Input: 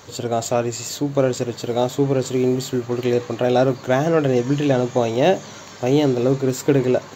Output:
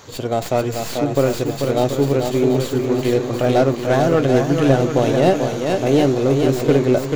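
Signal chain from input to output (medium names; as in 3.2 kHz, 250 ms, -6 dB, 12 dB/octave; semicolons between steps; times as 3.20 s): tracing distortion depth 0.15 ms; shuffle delay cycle 732 ms, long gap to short 1.5:1, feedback 37%, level -5.5 dB; slew-rate limiter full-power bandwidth 250 Hz; trim +1 dB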